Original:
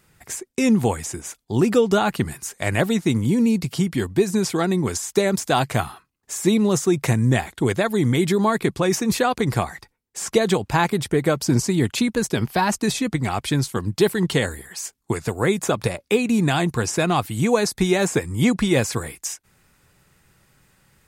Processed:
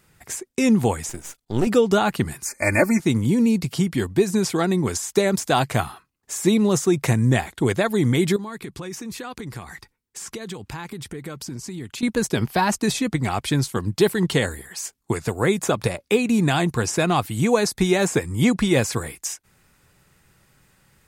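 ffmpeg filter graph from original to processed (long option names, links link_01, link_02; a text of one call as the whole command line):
ffmpeg -i in.wav -filter_complex "[0:a]asettb=1/sr,asplit=3[link_01][link_02][link_03];[link_01]atrim=end=1.094[link_04];[link_02]atrim=start=1.09:end=1.67,asetpts=PTS-STARTPTS,afade=type=in:duration=0.004:curve=qsin,afade=type=out:start_time=0.576:duration=0.004:curve=qsin,aeval=exprs='if(lt(val(0),0),0.251*val(0),val(0))':channel_layout=same,bandreject=frequency=1100:width=12[link_05];[link_03]atrim=start=1.666[link_06];[link_04][link_05]acrossfade=duration=0.004:curve1=hsin:curve2=qsin[link_07];[link_07][link_06]acrossfade=duration=0.004:curve1=qsin:curve2=hsin,asettb=1/sr,asplit=3[link_08][link_09][link_10];[link_08]atrim=end=2.454[link_11];[link_09]atrim=start=2.45:end=3,asetpts=PTS-STARTPTS,afade=type=in:duration=0.004:curve=qsin,afade=type=out:start_time=0.546:duration=0.004:curve=qsin,asuperstop=centerf=3300:order=20:qfactor=1.9,equalizer=frequency=3100:width_type=o:width=0.66:gain=9,aecho=1:1:3.4:0.87,atrim=end_sample=24255[link_12];[link_10]atrim=start=2.996[link_13];[link_11][link_12]acrossfade=duration=0.004:curve1=hsin:curve2=qsin[link_14];[link_14][link_13]acrossfade=duration=0.004:curve1=qsin:curve2=hsin,asettb=1/sr,asplit=3[link_15][link_16][link_17];[link_15]atrim=end=8.364[link_18];[link_16]atrim=start=8.36:end=12.03,asetpts=PTS-STARTPTS,afade=type=in:duration=0.004:curve=qsin,afade=type=out:start_time=3.666:duration=0.004:curve=qsin,equalizer=frequency=640:width_type=o:width=0.71:gain=-7.5,acompressor=threshold=-32dB:ratio=4:attack=3.2:release=140:knee=1:detection=peak[link_19];[link_17]atrim=start=12.026[link_20];[link_18][link_19]acrossfade=duration=0.004:curve1=hsin:curve2=qsin[link_21];[link_21][link_20]acrossfade=duration=0.004:curve1=qsin:curve2=hsin" out.wav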